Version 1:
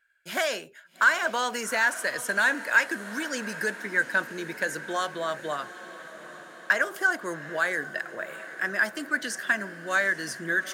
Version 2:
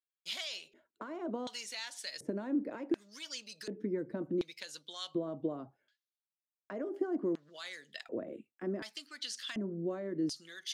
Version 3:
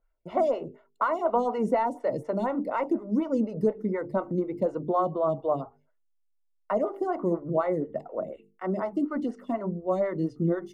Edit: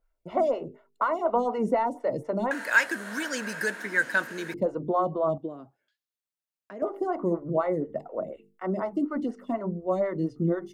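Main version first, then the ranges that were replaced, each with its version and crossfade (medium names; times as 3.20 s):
3
2.51–4.54 s: from 1
5.38–6.82 s: from 2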